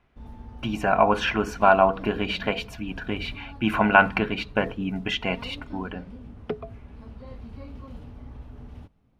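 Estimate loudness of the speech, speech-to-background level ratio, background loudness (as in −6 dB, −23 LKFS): −24.0 LKFS, 19.0 dB, −43.0 LKFS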